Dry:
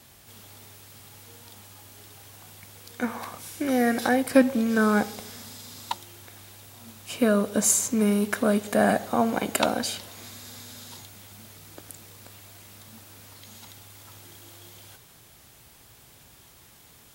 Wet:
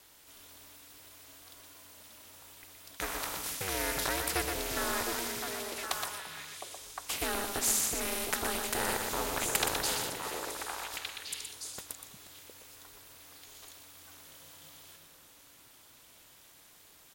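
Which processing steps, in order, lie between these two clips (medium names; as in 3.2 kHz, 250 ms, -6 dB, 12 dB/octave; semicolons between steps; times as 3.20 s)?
gate -41 dBFS, range -14 dB; bass shelf 380 Hz -10.5 dB; delay 121 ms -8.5 dB; ring modulator 190 Hz; on a send: repeats whose band climbs or falls 355 ms, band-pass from 160 Hz, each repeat 1.4 oct, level -1.5 dB; on the sum: spectrum-flattening compressor 2:1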